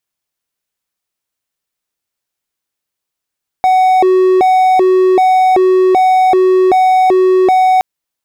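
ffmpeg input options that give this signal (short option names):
-f lavfi -i "aevalsrc='0.631*(1-4*abs(mod((559.5*t+187.5/1.3*(0.5-abs(mod(1.3*t,1)-0.5)))+0.25,1)-0.5))':d=4.17:s=44100"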